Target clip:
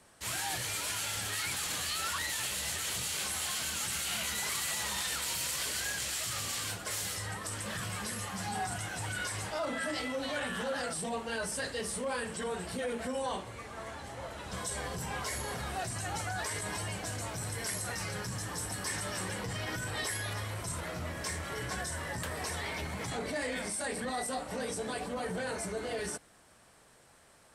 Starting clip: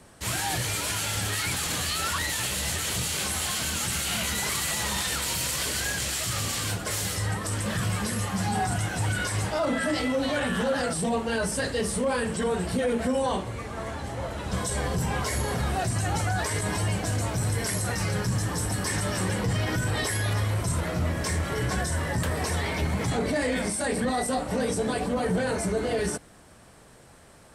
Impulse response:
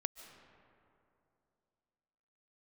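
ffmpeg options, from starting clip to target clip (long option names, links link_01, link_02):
-af "lowshelf=frequency=460:gain=-8.5,volume=-5.5dB"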